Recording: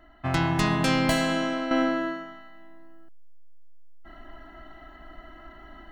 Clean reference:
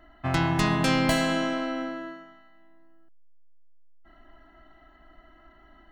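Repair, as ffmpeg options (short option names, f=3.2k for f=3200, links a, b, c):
-af "asetnsamples=n=441:p=0,asendcmd='1.71 volume volume -8.5dB',volume=0dB"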